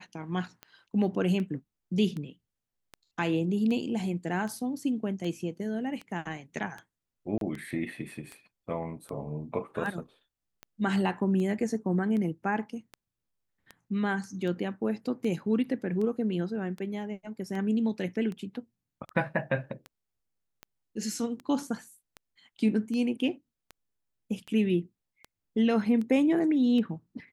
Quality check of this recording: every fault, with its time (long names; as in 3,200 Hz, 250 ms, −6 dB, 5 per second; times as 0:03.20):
scratch tick 78 rpm −26 dBFS
0:07.38–0:07.41: drop-out 32 ms